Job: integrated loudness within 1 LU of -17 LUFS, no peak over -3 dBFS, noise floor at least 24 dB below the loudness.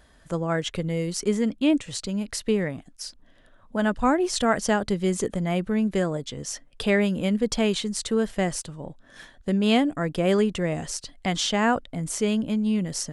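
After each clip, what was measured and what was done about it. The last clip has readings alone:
loudness -25.0 LUFS; peak level -8.0 dBFS; loudness target -17.0 LUFS
-> trim +8 dB; peak limiter -3 dBFS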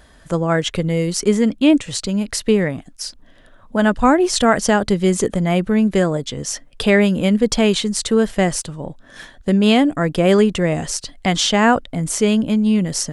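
loudness -17.5 LUFS; peak level -3.0 dBFS; noise floor -48 dBFS

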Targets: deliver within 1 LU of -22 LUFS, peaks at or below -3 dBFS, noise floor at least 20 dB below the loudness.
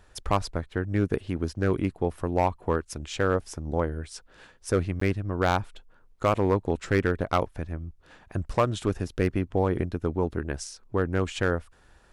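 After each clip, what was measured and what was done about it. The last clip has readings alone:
clipped samples 0.5%; clipping level -14.0 dBFS; dropouts 1; longest dropout 14 ms; loudness -28.0 LUFS; peak level -14.0 dBFS; loudness target -22.0 LUFS
-> clip repair -14 dBFS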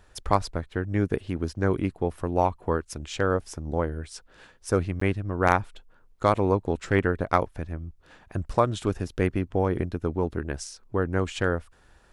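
clipped samples 0.0%; dropouts 1; longest dropout 14 ms
-> interpolate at 5.00 s, 14 ms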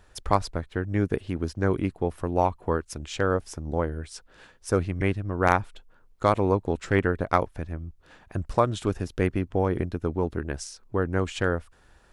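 dropouts 0; loudness -27.5 LUFS; peak level -5.0 dBFS; loudness target -22.0 LUFS
-> trim +5.5 dB; peak limiter -3 dBFS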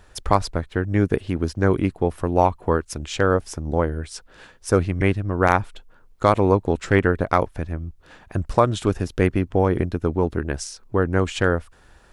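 loudness -22.0 LUFS; peak level -3.0 dBFS; noise floor -53 dBFS

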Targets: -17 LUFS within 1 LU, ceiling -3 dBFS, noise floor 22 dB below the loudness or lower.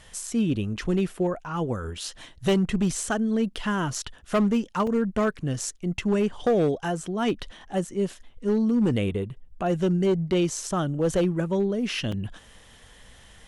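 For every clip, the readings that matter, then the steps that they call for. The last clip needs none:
clipped samples 1.3%; clipping level -17.0 dBFS; dropouts 3; longest dropout 3.5 ms; loudness -26.0 LUFS; peak level -17.0 dBFS; loudness target -17.0 LUFS
-> clip repair -17 dBFS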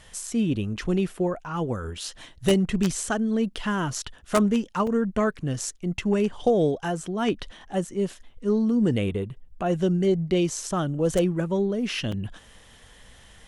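clipped samples 0.0%; dropouts 3; longest dropout 3.5 ms
-> interpolate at 4.87/7.03/12.12 s, 3.5 ms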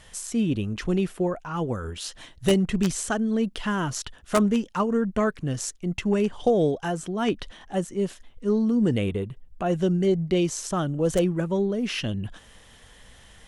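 dropouts 0; loudness -26.0 LUFS; peak level -8.0 dBFS; loudness target -17.0 LUFS
-> trim +9 dB; peak limiter -3 dBFS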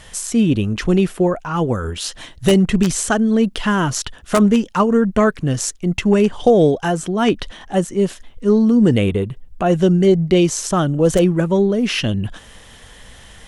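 loudness -17.0 LUFS; peak level -3.0 dBFS; noise floor -43 dBFS

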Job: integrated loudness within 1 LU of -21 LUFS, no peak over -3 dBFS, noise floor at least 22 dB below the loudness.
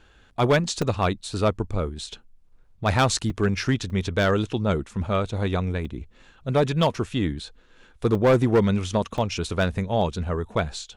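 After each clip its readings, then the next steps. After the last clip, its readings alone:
clipped samples 0.8%; clipping level -13.0 dBFS; dropouts 6; longest dropout 2.6 ms; loudness -24.5 LUFS; peak level -13.0 dBFS; loudness target -21.0 LUFS
-> clip repair -13 dBFS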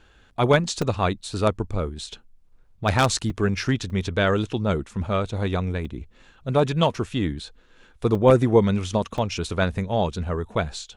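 clipped samples 0.0%; dropouts 6; longest dropout 2.6 ms
-> interpolate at 0.82/3.30/3.90/5.85/8.15/9.18 s, 2.6 ms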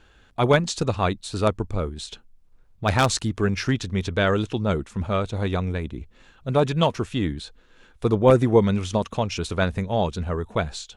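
dropouts 0; loudness -23.5 LUFS; peak level -4.0 dBFS; loudness target -21.0 LUFS
-> trim +2.5 dB; peak limiter -3 dBFS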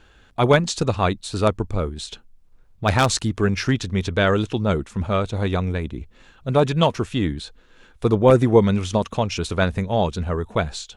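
loudness -21.0 LUFS; peak level -3.0 dBFS; noise floor -53 dBFS

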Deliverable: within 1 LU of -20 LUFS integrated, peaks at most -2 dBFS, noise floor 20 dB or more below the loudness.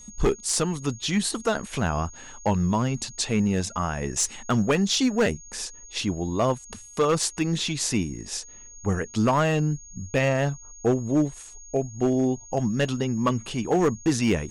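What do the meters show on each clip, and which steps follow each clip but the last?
clipped samples 1.0%; clipping level -15.0 dBFS; steady tone 6.6 kHz; tone level -44 dBFS; loudness -25.5 LUFS; peak level -15.0 dBFS; loudness target -20.0 LUFS
-> clip repair -15 dBFS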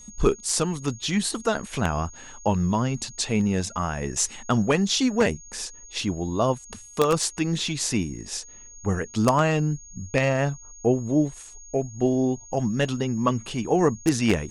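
clipped samples 0.0%; steady tone 6.6 kHz; tone level -44 dBFS
-> band-stop 6.6 kHz, Q 30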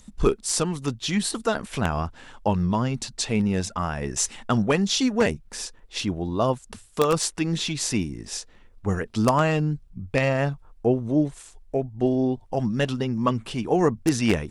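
steady tone not found; loudness -25.0 LUFS; peak level -6.0 dBFS; loudness target -20.0 LUFS
-> trim +5 dB; peak limiter -2 dBFS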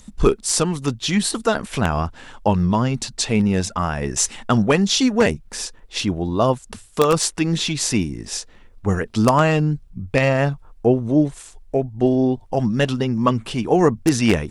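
loudness -20.0 LUFS; peak level -2.0 dBFS; noise floor -47 dBFS

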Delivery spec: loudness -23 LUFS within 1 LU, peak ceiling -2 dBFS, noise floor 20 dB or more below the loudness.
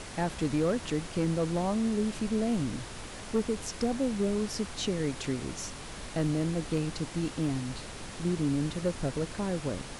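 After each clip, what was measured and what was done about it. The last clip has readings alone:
clipped samples 0.5%; clipping level -21.0 dBFS; noise floor -43 dBFS; noise floor target -52 dBFS; loudness -31.5 LUFS; peak level -21.0 dBFS; loudness target -23.0 LUFS
-> clip repair -21 dBFS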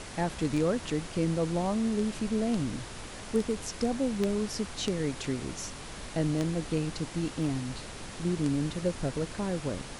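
clipped samples 0.0%; noise floor -43 dBFS; noise floor target -52 dBFS
-> noise print and reduce 9 dB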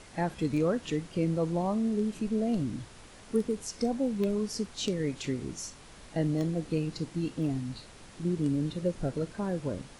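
noise floor -51 dBFS; noise floor target -52 dBFS
-> noise print and reduce 6 dB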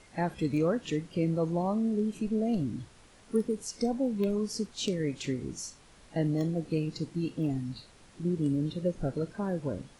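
noise floor -57 dBFS; loudness -31.5 LUFS; peak level -14.0 dBFS; loudness target -23.0 LUFS
-> trim +8.5 dB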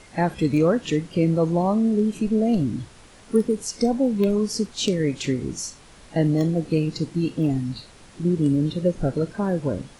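loudness -23.0 LUFS; peak level -5.5 dBFS; noise floor -49 dBFS

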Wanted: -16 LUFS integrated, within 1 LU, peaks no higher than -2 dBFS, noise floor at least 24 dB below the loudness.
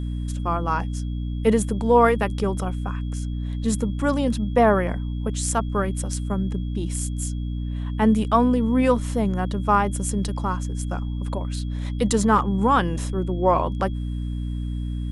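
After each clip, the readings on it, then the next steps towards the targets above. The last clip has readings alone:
hum 60 Hz; highest harmonic 300 Hz; hum level -25 dBFS; steady tone 3.3 kHz; tone level -52 dBFS; loudness -23.5 LUFS; peak level -5.0 dBFS; loudness target -16.0 LUFS
-> hum notches 60/120/180/240/300 Hz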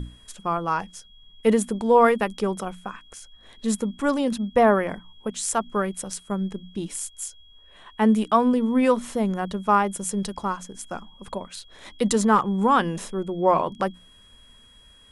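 hum not found; steady tone 3.3 kHz; tone level -52 dBFS
-> band-stop 3.3 kHz, Q 30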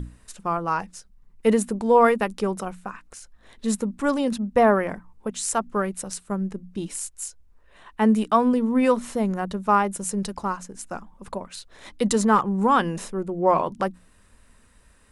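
steady tone not found; loudness -23.5 LUFS; peak level -5.5 dBFS; loudness target -16.0 LUFS
-> trim +7.5 dB; peak limiter -2 dBFS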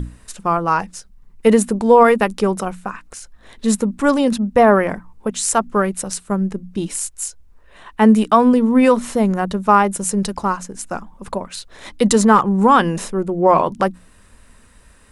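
loudness -16.5 LUFS; peak level -2.0 dBFS; noise floor -49 dBFS

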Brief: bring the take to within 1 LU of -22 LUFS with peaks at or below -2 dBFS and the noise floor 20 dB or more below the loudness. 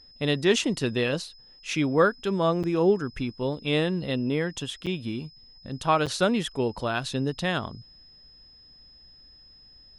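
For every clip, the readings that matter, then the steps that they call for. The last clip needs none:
dropouts 3; longest dropout 7.1 ms; steady tone 5.1 kHz; tone level -51 dBFS; loudness -26.5 LUFS; peak level -9.0 dBFS; loudness target -22.0 LUFS
-> interpolate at 2.63/4.86/6.06 s, 7.1 ms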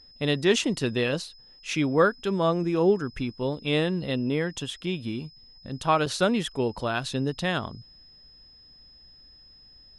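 dropouts 0; steady tone 5.1 kHz; tone level -51 dBFS
-> band-stop 5.1 kHz, Q 30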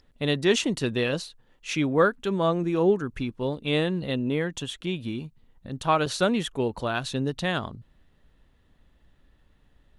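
steady tone not found; loudness -26.5 LUFS; peak level -9.0 dBFS; loudness target -22.0 LUFS
-> trim +4.5 dB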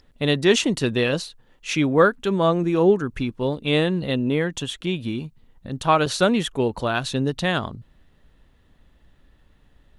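loudness -22.0 LUFS; peak level -4.5 dBFS; noise floor -58 dBFS

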